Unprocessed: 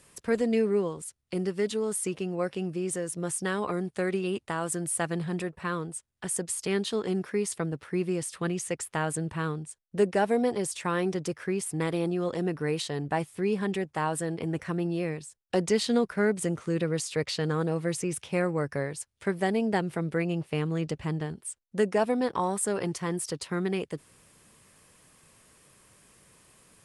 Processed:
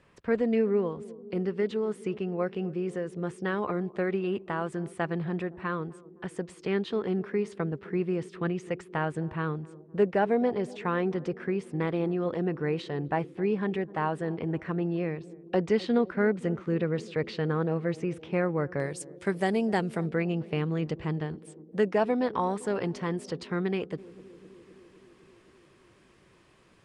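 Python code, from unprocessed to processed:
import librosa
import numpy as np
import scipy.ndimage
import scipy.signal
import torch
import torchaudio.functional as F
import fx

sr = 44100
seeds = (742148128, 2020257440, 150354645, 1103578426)

y = fx.lowpass(x, sr, hz=fx.steps((0.0, 2500.0), (18.8, 9500.0), (20.08, 3800.0)), slope=12)
y = fx.echo_banded(y, sr, ms=257, feedback_pct=81, hz=310.0, wet_db=-18.0)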